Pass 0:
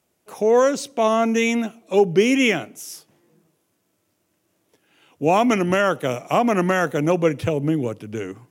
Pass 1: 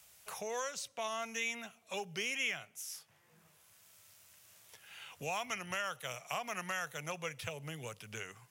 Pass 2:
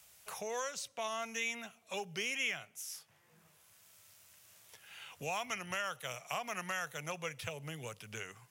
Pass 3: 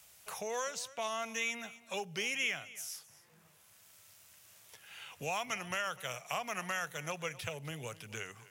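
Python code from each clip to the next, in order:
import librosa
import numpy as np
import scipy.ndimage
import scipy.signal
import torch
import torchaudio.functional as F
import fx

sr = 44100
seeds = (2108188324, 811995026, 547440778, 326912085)

y1 = fx.tone_stack(x, sr, knobs='10-0-10')
y1 = fx.band_squash(y1, sr, depth_pct=70)
y1 = y1 * 10.0 ** (-8.0 / 20.0)
y2 = y1
y3 = fx.dmg_crackle(y2, sr, seeds[0], per_s=22.0, level_db=-53.0)
y3 = y3 + 10.0 ** (-18.5 / 20.0) * np.pad(y3, (int(254 * sr / 1000.0), 0))[:len(y3)]
y3 = y3 * 10.0 ** (1.5 / 20.0)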